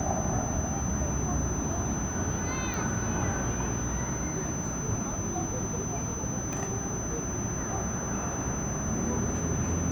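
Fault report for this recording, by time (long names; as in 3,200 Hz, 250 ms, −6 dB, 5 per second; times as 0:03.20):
whistle 6,100 Hz −36 dBFS
0:02.74: click
0:06.53: click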